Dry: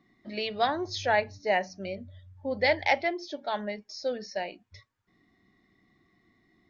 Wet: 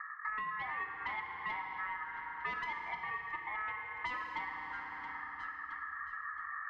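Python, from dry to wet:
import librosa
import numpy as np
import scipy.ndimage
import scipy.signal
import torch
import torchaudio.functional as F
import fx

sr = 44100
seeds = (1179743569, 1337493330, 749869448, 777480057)

p1 = fx.recorder_agc(x, sr, target_db=-13.5, rise_db_per_s=5.4, max_gain_db=30)
p2 = scipy.signal.sosfilt(scipy.signal.butter(6, 550.0, 'lowpass', fs=sr, output='sos'), p1)
p3 = fx.dereverb_blind(p2, sr, rt60_s=1.5)
p4 = scipy.signal.sosfilt(scipy.signal.butter(2, 130.0, 'highpass', fs=sr, output='sos'), p3)
p5 = fx.low_shelf(p4, sr, hz=290.0, db=3.5)
p6 = 10.0 ** (-31.5 / 20.0) * np.tanh(p5 / 10.0 ** (-31.5 / 20.0))
p7 = p6 * np.sin(2.0 * np.pi * 1500.0 * np.arange(len(p6)) / sr)
p8 = p7 + fx.echo_feedback(p7, sr, ms=670, feedback_pct=39, wet_db=-23.0, dry=0)
p9 = fx.rev_fdn(p8, sr, rt60_s=2.2, lf_ratio=1.05, hf_ratio=0.75, size_ms=19.0, drr_db=2.0)
p10 = fx.band_squash(p9, sr, depth_pct=100)
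y = p10 * 10.0 ** (-1.5 / 20.0)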